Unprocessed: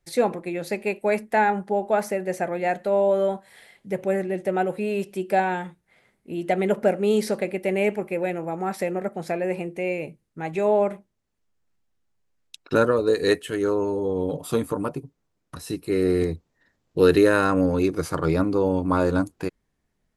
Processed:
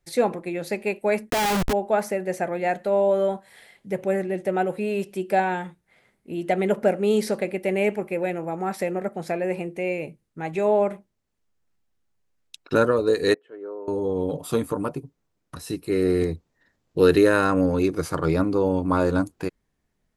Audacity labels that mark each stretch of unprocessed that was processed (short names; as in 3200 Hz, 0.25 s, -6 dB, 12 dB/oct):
1.300000	1.730000	Schmitt trigger flips at -38 dBFS
13.340000	13.880000	ladder band-pass 630 Hz, resonance 20%